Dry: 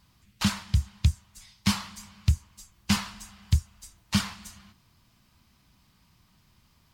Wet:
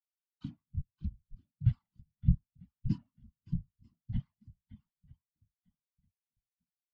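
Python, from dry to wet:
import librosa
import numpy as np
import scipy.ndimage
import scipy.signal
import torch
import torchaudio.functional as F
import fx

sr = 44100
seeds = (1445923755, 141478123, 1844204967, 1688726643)

y = fx.pitch_trill(x, sr, semitones=-7.0, every_ms=96)
y = fx.hum_notches(y, sr, base_hz=50, count=4)
y = fx.echo_swing(y, sr, ms=946, ratio=1.5, feedback_pct=43, wet_db=-7)
y = fx.whisperise(y, sr, seeds[0])
y = fx.spectral_expand(y, sr, expansion=2.5)
y = y * librosa.db_to_amplitude(-3.5)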